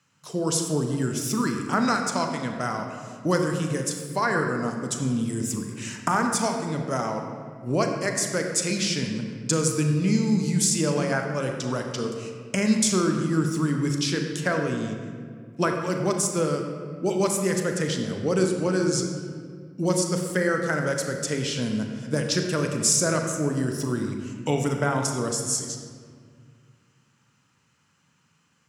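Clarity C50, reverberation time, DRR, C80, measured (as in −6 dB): 4.5 dB, 2.0 s, 3.0 dB, 5.5 dB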